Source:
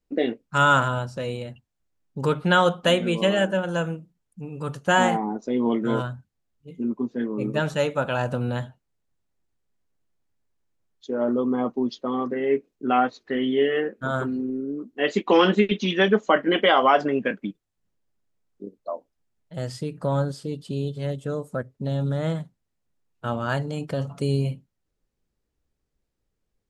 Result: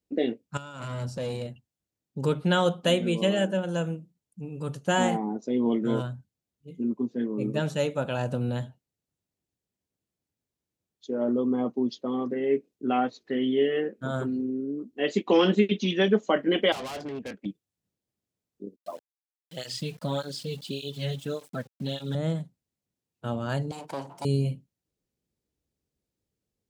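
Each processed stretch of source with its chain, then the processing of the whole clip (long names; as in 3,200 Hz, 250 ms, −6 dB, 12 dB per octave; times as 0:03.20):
0:00.57–0:01.47: compressor whose output falls as the input rises −28 dBFS + tube saturation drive 23 dB, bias 0.3
0:16.72–0:17.46: low-shelf EQ 120 Hz −11 dB + tube saturation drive 29 dB, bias 0.65
0:18.76–0:22.15: parametric band 3,300 Hz +15 dB 2.2 octaves + centre clipping without the shift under −41 dBFS + through-zero flanger with one copy inverted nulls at 1.7 Hz, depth 3.7 ms
0:23.71–0:24.25: lower of the sound and its delayed copy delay 1.3 ms + high-pass filter 270 Hz + parametric band 930 Hz +14.5 dB 0.38 octaves
whole clip: high-pass filter 82 Hz; parametric band 1,300 Hz −8 dB 1.8 octaves; level −1 dB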